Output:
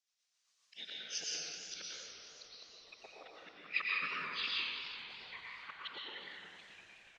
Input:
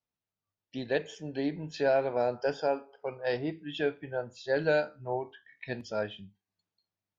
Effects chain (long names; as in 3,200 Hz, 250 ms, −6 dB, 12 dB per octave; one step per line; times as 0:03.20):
pitch glide at a constant tempo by −10.5 semitones starting unshifted
rotating-speaker cabinet horn 7.5 Hz, later 1.1 Hz, at 0:00.52
gate with flip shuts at −26 dBFS, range −41 dB
random phases in short frames
Chebyshev band-pass filter 180–6,300 Hz, order 3
parametric band 290 Hz −13.5 dB 1.5 octaves
volume swells 441 ms
first difference
echo with shifted repeats 366 ms, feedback 61%, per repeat −110 Hz, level −14 dB
dense smooth reverb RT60 1.1 s, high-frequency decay 0.9×, pre-delay 100 ms, DRR −3 dB
automatic gain control
feedback echo with a swinging delay time 92 ms, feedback 79%, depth 164 cents, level −10.5 dB
level +17 dB